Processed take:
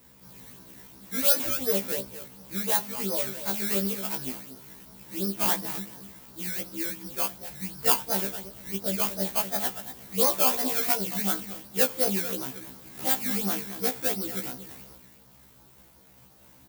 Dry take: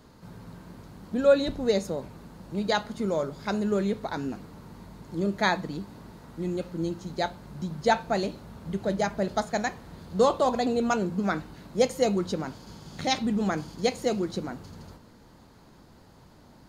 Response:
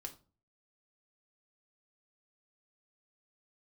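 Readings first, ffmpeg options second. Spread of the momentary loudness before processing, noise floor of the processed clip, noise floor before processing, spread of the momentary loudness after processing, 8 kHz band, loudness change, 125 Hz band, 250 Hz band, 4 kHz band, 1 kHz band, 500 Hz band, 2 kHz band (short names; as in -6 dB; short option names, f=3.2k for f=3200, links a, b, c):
21 LU, -55 dBFS, -54 dBFS, 19 LU, +11.0 dB, +2.0 dB, -5.5 dB, -5.5 dB, +2.0 dB, -4.5 dB, -6.5 dB, -2.5 dB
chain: -filter_complex "[0:a]equalizer=f=74:t=o:w=2.2:g=12.5,asplit=2[a][b];[b]adelay=232,lowpass=f=1.9k:p=1,volume=-11dB,asplit=2[c][d];[d]adelay=232,lowpass=f=1.9k:p=1,volume=0.21,asplit=2[e][f];[f]adelay=232,lowpass=f=1.9k:p=1,volume=0.21[g];[a][c][e][g]amix=inputs=4:normalize=0,acrusher=samples=16:mix=1:aa=0.000001:lfo=1:lforange=16:lforate=2.8,aemphasis=mode=production:type=bsi,afftfilt=real='re*1.73*eq(mod(b,3),0)':imag='im*1.73*eq(mod(b,3),0)':win_size=2048:overlap=0.75,volume=-3dB"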